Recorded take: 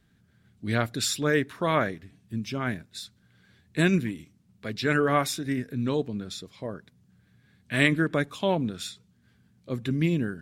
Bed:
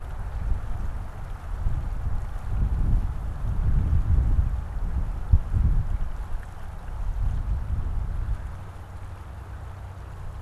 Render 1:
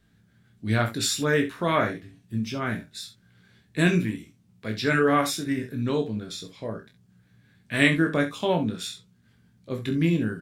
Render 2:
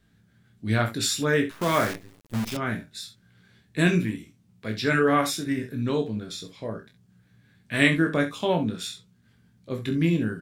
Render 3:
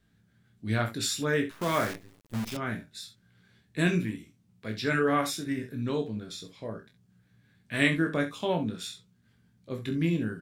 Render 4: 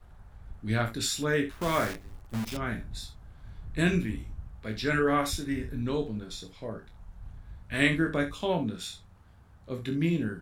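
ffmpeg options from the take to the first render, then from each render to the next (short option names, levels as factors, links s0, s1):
-filter_complex "[0:a]asplit=2[s0][s1];[s1]adelay=18,volume=0.473[s2];[s0][s2]amix=inputs=2:normalize=0,aecho=1:1:28|67:0.422|0.266"
-filter_complex "[0:a]asettb=1/sr,asplit=3[s0][s1][s2];[s0]atrim=end=1.514[s3];[s1]atrim=start=1.51:end=2.57,asetpts=PTS-STARTPTS,afade=t=in:d=0.004:c=qsin,afade=t=out:st=1.056:d=0.004:c=qsin,acrusher=bits=6:dc=4:mix=0:aa=0.000001[s4];[s2]atrim=start=2.566[s5];[s3][s4]acrossfade=d=0.004:c1=hsin:c2=qsin[s6];[s6][s5]acrossfade=d=0.004:c1=qsin:c2=hsin"
-af "volume=0.596"
-filter_complex "[1:a]volume=0.119[s0];[0:a][s0]amix=inputs=2:normalize=0"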